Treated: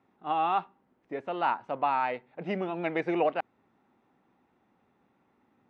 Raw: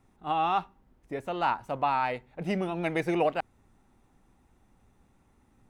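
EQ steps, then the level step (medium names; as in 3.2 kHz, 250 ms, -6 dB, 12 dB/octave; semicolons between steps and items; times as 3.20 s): band-pass 220–3400 Hz; distance through air 59 m; 0.0 dB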